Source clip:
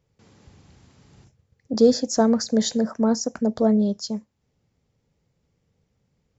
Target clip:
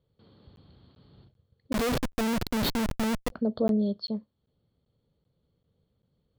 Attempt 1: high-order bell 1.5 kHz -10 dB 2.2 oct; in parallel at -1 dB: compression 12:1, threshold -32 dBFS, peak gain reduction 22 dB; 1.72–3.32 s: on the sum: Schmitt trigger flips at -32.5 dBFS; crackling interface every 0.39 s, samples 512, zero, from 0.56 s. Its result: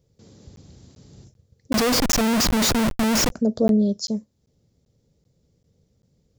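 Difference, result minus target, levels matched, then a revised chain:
4 kHz band +3.0 dB
rippled Chebyshev low-pass 4.5 kHz, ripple 9 dB; high-order bell 1.5 kHz -10 dB 2.2 oct; in parallel at -1 dB: compression 12:1, threshold -32 dBFS, peak gain reduction 14.5 dB; 1.72–3.32 s: on the sum: Schmitt trigger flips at -32.5 dBFS; crackling interface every 0.39 s, samples 512, zero, from 0.56 s

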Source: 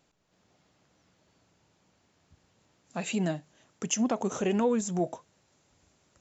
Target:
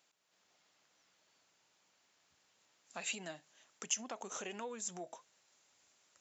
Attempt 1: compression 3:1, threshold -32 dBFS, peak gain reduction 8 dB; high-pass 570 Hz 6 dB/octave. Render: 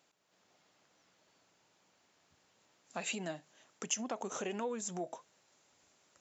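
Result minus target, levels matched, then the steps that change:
500 Hz band +4.5 dB
change: high-pass 1.6 kHz 6 dB/octave

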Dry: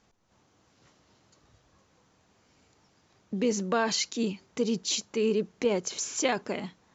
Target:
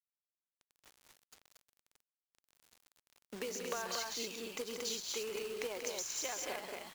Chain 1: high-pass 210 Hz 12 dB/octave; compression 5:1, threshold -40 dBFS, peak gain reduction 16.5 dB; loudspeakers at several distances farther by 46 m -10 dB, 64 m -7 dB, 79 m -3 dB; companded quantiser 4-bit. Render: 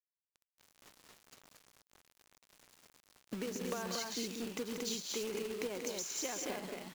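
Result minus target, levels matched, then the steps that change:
250 Hz band +8.0 dB
change: high-pass 560 Hz 12 dB/octave

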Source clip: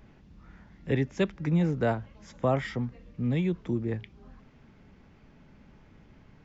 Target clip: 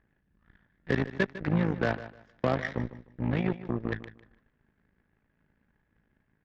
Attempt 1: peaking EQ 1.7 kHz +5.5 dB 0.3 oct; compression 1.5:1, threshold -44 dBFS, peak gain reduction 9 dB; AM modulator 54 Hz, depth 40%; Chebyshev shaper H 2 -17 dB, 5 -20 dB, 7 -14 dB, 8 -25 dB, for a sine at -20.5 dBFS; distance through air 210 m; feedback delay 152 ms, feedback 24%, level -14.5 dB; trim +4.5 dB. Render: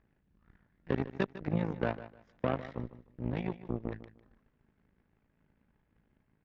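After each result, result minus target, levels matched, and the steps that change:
2 kHz band -4.5 dB; compression: peak gain reduction +3 dB
change: peaking EQ 1.7 kHz +14.5 dB 0.3 oct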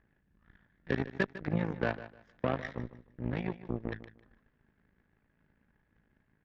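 compression: peak gain reduction +3.5 dB
change: compression 1.5:1, threshold -33 dBFS, peak gain reduction 5.5 dB

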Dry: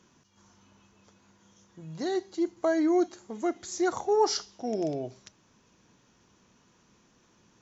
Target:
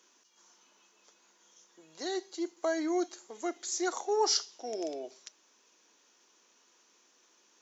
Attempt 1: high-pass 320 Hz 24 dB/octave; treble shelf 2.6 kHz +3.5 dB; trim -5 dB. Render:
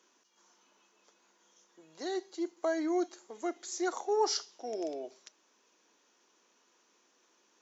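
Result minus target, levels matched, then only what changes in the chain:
4 kHz band -3.5 dB
change: treble shelf 2.6 kHz +10 dB

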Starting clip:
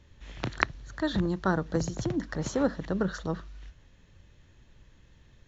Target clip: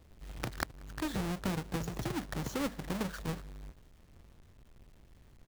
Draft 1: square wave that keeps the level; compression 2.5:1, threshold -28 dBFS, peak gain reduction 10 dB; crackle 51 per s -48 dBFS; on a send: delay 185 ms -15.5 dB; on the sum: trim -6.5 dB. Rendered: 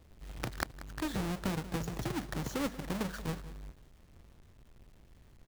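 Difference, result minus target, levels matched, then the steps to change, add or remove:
echo-to-direct +11.5 dB
change: delay 185 ms -27 dB

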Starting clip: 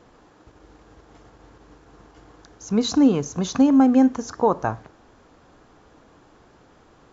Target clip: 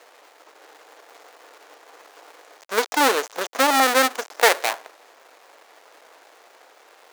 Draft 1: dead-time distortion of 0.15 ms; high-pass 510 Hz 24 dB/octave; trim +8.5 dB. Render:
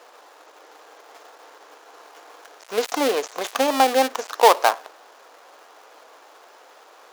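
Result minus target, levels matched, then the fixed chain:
dead-time distortion: distortion -9 dB
dead-time distortion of 0.42 ms; high-pass 510 Hz 24 dB/octave; trim +8.5 dB

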